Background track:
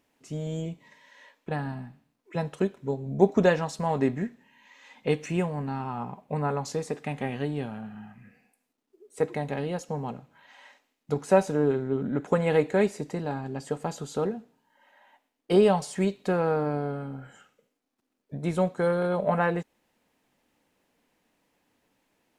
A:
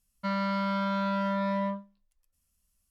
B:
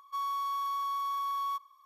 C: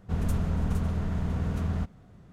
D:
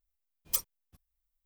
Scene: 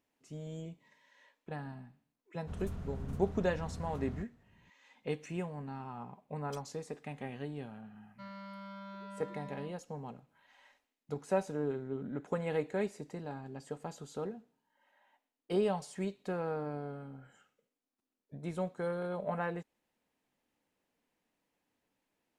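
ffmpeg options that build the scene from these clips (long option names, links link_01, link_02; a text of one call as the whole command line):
ffmpeg -i bed.wav -i cue0.wav -i cue1.wav -i cue2.wav -i cue3.wav -filter_complex "[0:a]volume=-11dB[link_01];[4:a]lowpass=4800[link_02];[3:a]atrim=end=2.32,asetpts=PTS-STARTPTS,volume=-14dB,afade=type=in:duration=0.004:curve=hsin,afade=type=out:start_time=2.316:duration=0.004:curve=hsin,adelay=2380[link_03];[link_02]atrim=end=1.45,asetpts=PTS-STARTPTS,volume=-13dB,afade=type=in:duration=0.004:curve=hsin,afade=type=out:start_time=1.446:duration=0.004:curve=hsin,adelay=5990[link_04];[1:a]atrim=end=2.9,asetpts=PTS-STARTPTS,volume=-18dB,afade=type=in:duration=0.004:curve=hsin,afade=type=out:start_time=2.896:duration=0.004:curve=hsin,adelay=7950[link_05];[link_01][link_03][link_04][link_05]amix=inputs=4:normalize=0" out.wav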